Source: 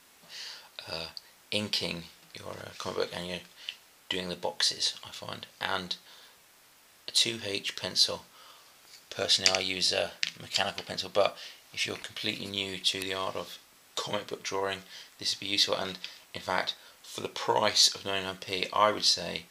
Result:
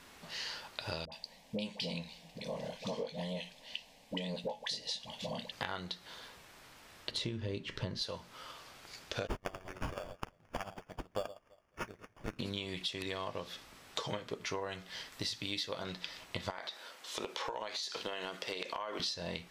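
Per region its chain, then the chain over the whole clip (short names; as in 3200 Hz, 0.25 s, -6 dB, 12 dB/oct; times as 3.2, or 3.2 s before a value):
1.05–5.52 high shelf 5100 Hz -6 dB + fixed phaser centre 360 Hz, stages 6 + dispersion highs, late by 71 ms, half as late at 780 Hz
7.11–8.02 tilt -3 dB/oct + notch 740 Hz, Q 6.6
9.27–12.39 echo with dull and thin repeats by turns 0.109 s, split 1200 Hz, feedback 56%, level -6 dB + sample-rate reducer 4000 Hz + upward expander 2.5:1, over -41 dBFS
15.12–15.84 high shelf 8800 Hz +8.5 dB + notch 740 Hz, Q 16
16.5–19 HPF 340 Hz + compressor, threshold -34 dBFS
whole clip: LPF 3500 Hz 6 dB/oct; low shelf 130 Hz +9 dB; compressor 10:1, threshold -40 dBFS; gain +5 dB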